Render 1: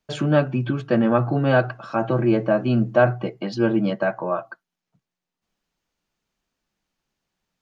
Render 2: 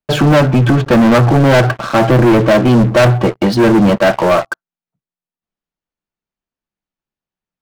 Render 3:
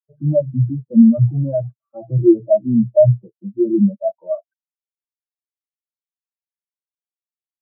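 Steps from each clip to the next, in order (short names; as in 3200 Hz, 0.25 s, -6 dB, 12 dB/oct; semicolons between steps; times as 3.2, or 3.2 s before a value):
high shelf 4000 Hz -9.5 dB; sample leveller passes 5
Chebyshev low-pass 1300 Hz, order 2; spectral expander 4:1; gain +2 dB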